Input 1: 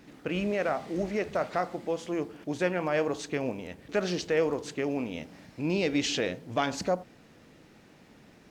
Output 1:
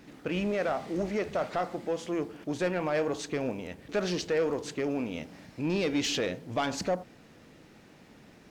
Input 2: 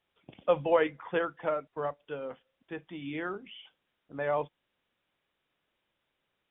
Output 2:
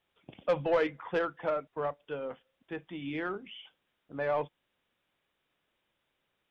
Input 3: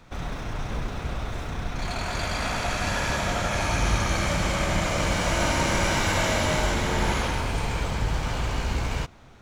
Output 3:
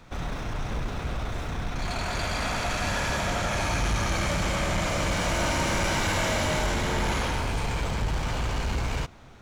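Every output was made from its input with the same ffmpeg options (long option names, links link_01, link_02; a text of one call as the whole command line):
ffmpeg -i in.wav -af "asoftclip=type=tanh:threshold=-19dB,aeval=exprs='0.112*(cos(1*acos(clip(val(0)/0.112,-1,1)))-cos(1*PI/2))+0.00282*(cos(5*acos(clip(val(0)/0.112,-1,1)))-cos(5*PI/2))+0.000891*(cos(6*acos(clip(val(0)/0.112,-1,1)))-cos(6*PI/2))':channel_layout=same" out.wav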